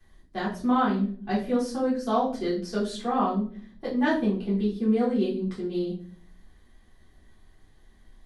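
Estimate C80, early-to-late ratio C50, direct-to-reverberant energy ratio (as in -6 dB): 12.0 dB, 7.0 dB, -9.5 dB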